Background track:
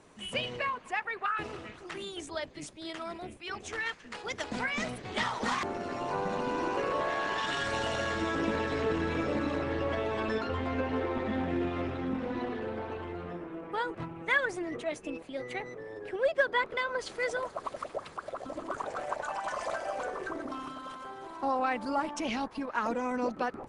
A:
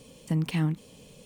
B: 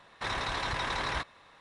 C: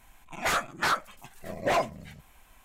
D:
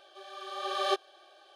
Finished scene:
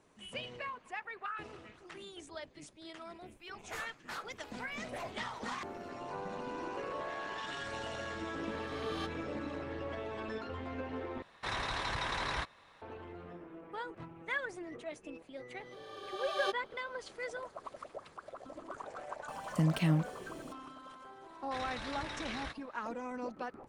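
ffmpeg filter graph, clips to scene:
ffmpeg -i bed.wav -i cue0.wav -i cue1.wav -i cue2.wav -i cue3.wav -filter_complex "[4:a]asplit=2[link_01][link_02];[2:a]asplit=2[link_03][link_04];[0:a]volume=-9dB[link_05];[link_01]highpass=930[link_06];[link_04]equalizer=frequency=930:width=4:gain=-12[link_07];[link_05]asplit=2[link_08][link_09];[link_08]atrim=end=11.224[link_10];[link_03]atrim=end=1.6,asetpts=PTS-STARTPTS,volume=-3.5dB[link_11];[link_09]atrim=start=12.816[link_12];[3:a]atrim=end=2.64,asetpts=PTS-STARTPTS,volume=-17.5dB,afade=type=in:duration=0.004:curve=hsin,afade=type=out:start_time=2.636:duration=0.004:curve=hsin,adelay=3260[link_13];[link_06]atrim=end=1.55,asetpts=PTS-STARTPTS,volume=-11dB,afade=type=in:duration=0.004:curve=hsin,afade=type=out:start_time=1.546:duration=0.004:curve=hsin,adelay=8110[link_14];[link_02]atrim=end=1.55,asetpts=PTS-STARTPTS,volume=-6.5dB,afade=type=in:duration=0.004:curve=hsin,afade=type=out:start_time=1.546:duration=0.004:curve=hsin,adelay=686196S[link_15];[1:a]atrim=end=1.25,asetpts=PTS-STARTPTS,volume=-2.5dB,afade=type=in:duration=0.004:curve=hsin,afade=type=out:start_time=1.246:duration=0.004:curve=hsin,adelay=19280[link_16];[link_07]atrim=end=1.6,asetpts=PTS-STARTPTS,volume=-9dB,afade=type=in:duration=0.004:curve=hsin,afade=type=out:start_time=1.596:duration=0.004:curve=hsin,adelay=21300[link_17];[link_10][link_11]acrossfade=duration=0.004:curve1=hsin:curve2=hsin[link_18];[link_18][link_12]acrossfade=duration=0.004:curve1=hsin:curve2=hsin[link_19];[link_19][link_13][link_14][link_15][link_16][link_17]amix=inputs=6:normalize=0" out.wav

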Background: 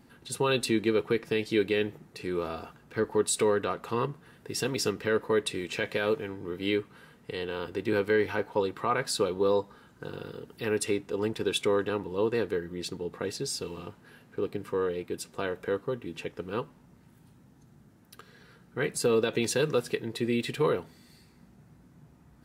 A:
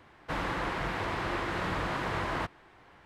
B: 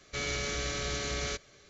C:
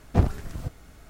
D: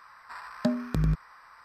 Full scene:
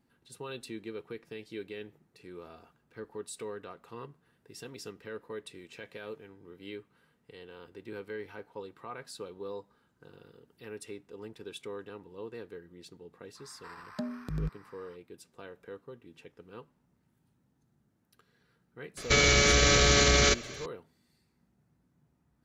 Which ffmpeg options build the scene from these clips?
ffmpeg -i bed.wav -i cue0.wav -i cue1.wav -i cue2.wav -i cue3.wav -filter_complex "[0:a]volume=-15dB[link_01];[4:a]alimiter=limit=-19dB:level=0:latency=1:release=122[link_02];[2:a]alimiter=level_in=27dB:limit=-1dB:release=50:level=0:latency=1[link_03];[link_02]atrim=end=1.64,asetpts=PTS-STARTPTS,volume=-6dB,afade=type=in:duration=0.05,afade=type=out:start_time=1.59:duration=0.05,adelay=13340[link_04];[link_03]atrim=end=1.69,asetpts=PTS-STARTPTS,volume=-12dB,afade=type=in:duration=0.004:curve=hsin,afade=type=out:start_time=1.686:duration=0.004:curve=hsin,adelay=18970[link_05];[link_01][link_04][link_05]amix=inputs=3:normalize=0" out.wav

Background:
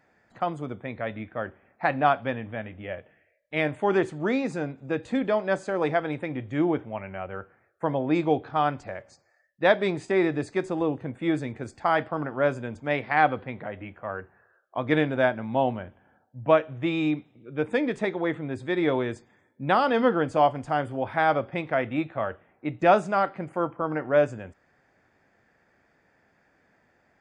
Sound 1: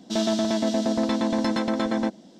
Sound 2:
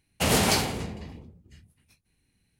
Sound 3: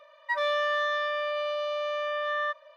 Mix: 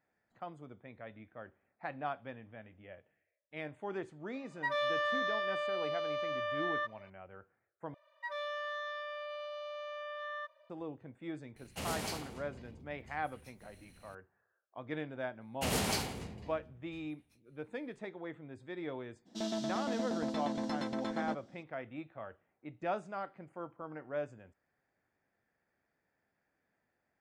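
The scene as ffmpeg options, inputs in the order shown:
ffmpeg -i bed.wav -i cue0.wav -i cue1.wav -i cue2.wav -filter_complex "[3:a]asplit=2[link_01][link_02];[2:a]asplit=2[link_03][link_04];[0:a]volume=-17dB[link_05];[link_03]acompressor=mode=upward:threshold=-28dB:ratio=4:attack=0.19:release=158:knee=2.83:detection=peak[link_06];[link_05]asplit=2[link_07][link_08];[link_07]atrim=end=7.944[link_09];[link_02]atrim=end=2.76,asetpts=PTS-STARTPTS,volume=-12.5dB[link_10];[link_08]atrim=start=10.696[link_11];[link_01]atrim=end=2.76,asetpts=PTS-STARTPTS,volume=-6dB,afade=type=in:duration=0.004:curve=hsin,afade=type=out:start_time=2.756:duration=0.004:curve=hsin,adelay=4340[link_12];[link_06]atrim=end=2.59,asetpts=PTS-STARTPTS,volume=-16.5dB,afade=type=in:duration=0.004:curve=hsin,afade=type=out:start_time=2.586:duration=0.004:curve=hsin,adelay=11560[link_13];[link_04]atrim=end=2.59,asetpts=PTS-STARTPTS,volume=-10.5dB,afade=type=in:duration=0.004:curve=hsin,afade=type=out:start_time=2.586:duration=0.004:curve=hsin,adelay=15410[link_14];[1:a]atrim=end=2.39,asetpts=PTS-STARTPTS,volume=-13dB,afade=type=in:duration=0.02,afade=type=out:start_time=2.37:duration=0.02,adelay=19250[link_15];[link_09][link_10]acrossfade=duration=0.004:curve1=hsin:curve2=hsin[link_16];[link_16][link_11]acrossfade=duration=0.004:curve1=hsin:curve2=hsin[link_17];[link_17][link_12][link_13][link_14][link_15]amix=inputs=5:normalize=0" out.wav

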